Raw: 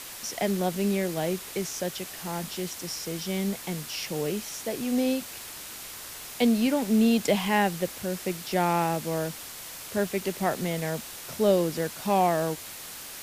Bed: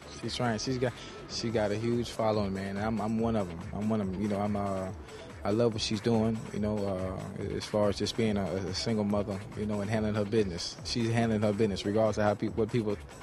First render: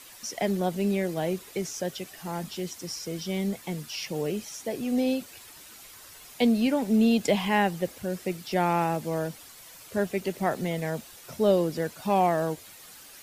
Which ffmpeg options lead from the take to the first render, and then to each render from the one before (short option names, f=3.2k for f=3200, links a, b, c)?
-af "afftdn=nr=10:nf=-41"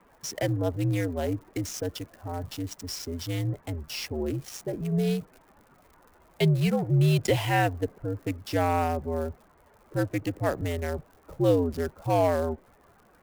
-filter_complex "[0:a]acrossover=split=1500[a][b];[b]acrusher=bits=5:mix=0:aa=0.5[c];[a][c]amix=inputs=2:normalize=0,afreqshift=-79"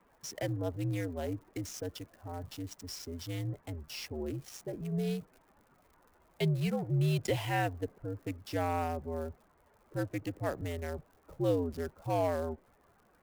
-af "volume=-7.5dB"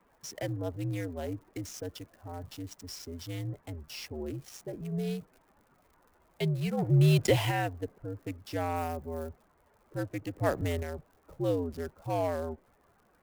-filter_complex "[0:a]asplit=3[a][b][c];[a]afade=t=out:st=6.77:d=0.02[d];[b]acontrast=79,afade=t=in:st=6.77:d=0.02,afade=t=out:st=7.5:d=0.02[e];[c]afade=t=in:st=7.5:d=0.02[f];[d][e][f]amix=inputs=3:normalize=0,asettb=1/sr,asplit=3[g][h][i];[g]atrim=end=8.764[j];[h]atrim=start=8.76:end=9.29,asetpts=PTS-STARTPTS,afade=t=in:d=0.004:c=qsin,afade=t=out:st=0.526:d=0.004:c=qsin,highshelf=f=8.9k:g=9.5[k];[i]atrim=start=9.286[l];[j][k]acrossfade=d=0.004:c1=hsin:c2=qsin[m];[m][l]acrossfade=d=0.004:c1=qsin:c2=hsin,asettb=1/sr,asplit=3[n][o][p];[n]atrim=end=10.384[q];[o]atrim=start=10.38:end=10.83,asetpts=PTS-STARTPTS,afade=t=in:d=0.004:c=qsin,afade=t=out:st=0.446:d=0.004:c=qsin,acontrast=54[r];[p]atrim=start=10.826[s];[q][r]acrossfade=d=0.004:c1=hsin:c2=qsin[t];[t][s]acrossfade=d=0.004:c1=qsin:c2=hsin"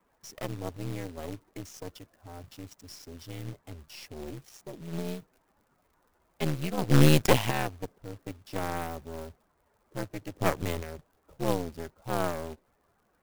-af "aeval=exprs='0.251*(cos(1*acos(clip(val(0)/0.251,-1,1)))-cos(1*PI/2))+0.1*(cos(4*acos(clip(val(0)/0.251,-1,1)))-cos(4*PI/2))+0.00282*(cos(5*acos(clip(val(0)/0.251,-1,1)))-cos(5*PI/2))+0.0158*(cos(7*acos(clip(val(0)/0.251,-1,1)))-cos(7*PI/2))':c=same,acrusher=bits=3:mode=log:mix=0:aa=0.000001"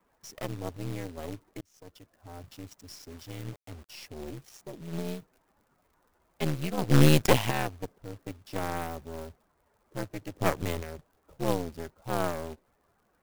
-filter_complex "[0:a]asettb=1/sr,asplit=3[a][b][c];[a]atrim=end=3.104[d];[b]atrim=start=3.1:end=3.89,asetpts=PTS-STARTPTS,afade=t=in:d=0.004:c=qsin,afade=t=out:st=0.786:d=0.004:c=qsin,acrusher=bits=7:mix=0:aa=0.5[e];[c]atrim=start=3.886[f];[d][e]acrossfade=d=0.004:c1=hsin:c2=qsin[g];[g][f]acrossfade=d=0.004:c1=qsin:c2=hsin,asplit=2[h][i];[h]atrim=end=1.61,asetpts=PTS-STARTPTS,afade=t=out:st=1.606:d=0.004:c=hsin[j];[i]atrim=start=1.61,asetpts=PTS-STARTPTS,afade=t=in:d=0.71[k];[j][k]concat=n=2:v=0:a=1"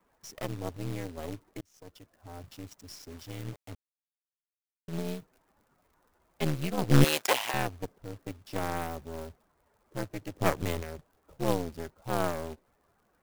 -filter_complex "[0:a]asettb=1/sr,asplit=3[a][b][c];[a]atrim=end=7.044[d];[b]atrim=start=7.04:end=7.54,asetpts=PTS-STARTPTS,afade=t=in:d=0.004:c=qsin,afade=t=out:st=0.496:d=0.004:c=qsin,highpass=650[e];[c]atrim=start=7.536[f];[d][e]acrossfade=d=0.004:c1=hsin:c2=qsin[g];[g][f]acrossfade=d=0.004:c1=qsin:c2=hsin,asplit=3[h][i][j];[h]atrim=end=3.75,asetpts=PTS-STARTPTS,afade=t=out:st=3.746:d=0.004:c=hsin[k];[i]atrim=start=3.75:end=4.88,asetpts=PTS-STARTPTS,volume=0[l];[j]atrim=start=4.88,asetpts=PTS-STARTPTS,afade=t=in:d=0.004:c=hsin[m];[k][l][m]concat=n=3:v=0:a=1"